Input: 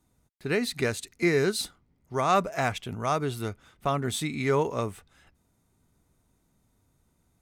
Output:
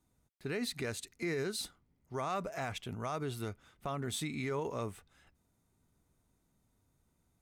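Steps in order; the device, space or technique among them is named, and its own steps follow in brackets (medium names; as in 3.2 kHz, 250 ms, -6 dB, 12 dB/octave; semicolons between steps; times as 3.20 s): clipper into limiter (hard clipper -13.5 dBFS, distortion -41 dB; peak limiter -21.5 dBFS, peak gain reduction 8 dB); trim -6 dB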